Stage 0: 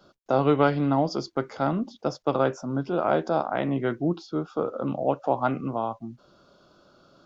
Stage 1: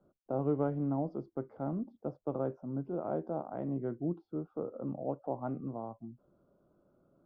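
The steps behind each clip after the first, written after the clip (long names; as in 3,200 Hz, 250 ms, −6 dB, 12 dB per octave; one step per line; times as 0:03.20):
Bessel low-pass filter 510 Hz, order 2
level −8 dB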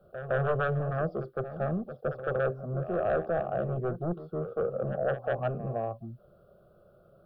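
sine wavefolder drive 9 dB, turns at −19 dBFS
phaser with its sweep stopped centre 1,400 Hz, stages 8
backwards echo 162 ms −11 dB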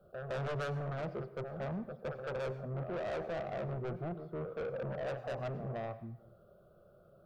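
soft clipping −31.5 dBFS, distortion −9 dB
dense smooth reverb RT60 0.8 s, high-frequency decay 0.6×, pre-delay 80 ms, DRR 15 dB
level −3 dB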